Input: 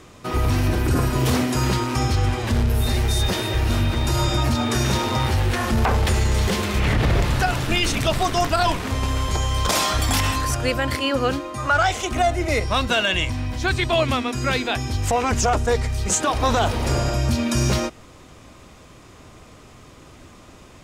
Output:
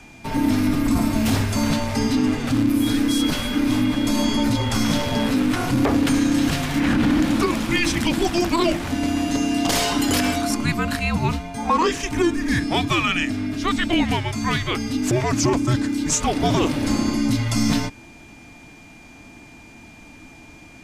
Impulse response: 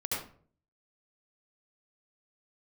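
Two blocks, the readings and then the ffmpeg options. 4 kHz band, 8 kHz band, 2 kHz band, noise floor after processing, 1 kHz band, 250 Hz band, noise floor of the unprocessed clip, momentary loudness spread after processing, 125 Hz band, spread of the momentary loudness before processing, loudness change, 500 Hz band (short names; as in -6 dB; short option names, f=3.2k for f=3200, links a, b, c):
-1.0 dB, -0.5 dB, -1.0 dB, -45 dBFS, -2.5 dB, +7.0 dB, -46 dBFS, 4 LU, -4.0 dB, 3 LU, +0.5 dB, -2.0 dB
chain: -af "afreqshift=-350,aeval=exprs='val(0)+0.00447*sin(2*PI*2400*n/s)':c=same"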